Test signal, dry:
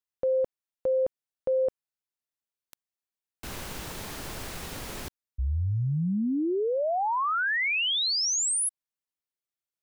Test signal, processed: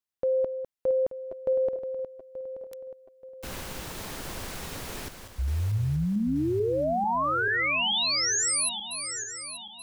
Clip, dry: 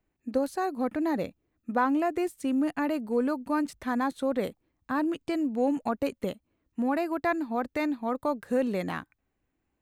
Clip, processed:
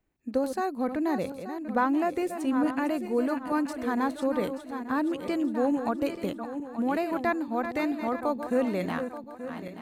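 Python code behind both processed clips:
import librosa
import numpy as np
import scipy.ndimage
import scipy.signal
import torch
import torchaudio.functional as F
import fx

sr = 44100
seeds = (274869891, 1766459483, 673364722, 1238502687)

y = fx.reverse_delay_fb(x, sr, ms=440, feedback_pct=62, wet_db=-9.0)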